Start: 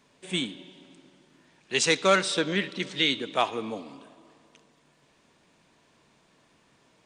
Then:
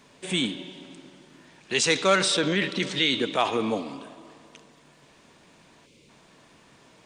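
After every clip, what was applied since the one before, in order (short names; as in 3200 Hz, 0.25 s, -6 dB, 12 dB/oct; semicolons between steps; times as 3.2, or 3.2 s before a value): spectral gain 5.86–6.09, 600–2000 Hz -15 dB; in parallel at -2 dB: negative-ratio compressor -31 dBFS, ratio -0.5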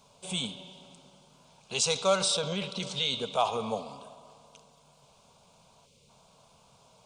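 fixed phaser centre 760 Hz, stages 4; gain -1 dB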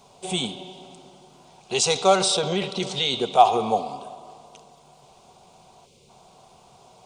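small resonant body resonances 360/740/1900 Hz, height 13 dB, ringing for 45 ms; gain +5 dB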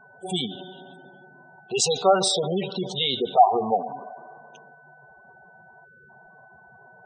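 whine 1500 Hz -51 dBFS; spectral gate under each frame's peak -15 dB strong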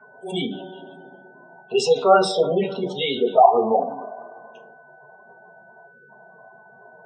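reverb RT60 0.30 s, pre-delay 3 ms, DRR -2.5 dB; gain -8 dB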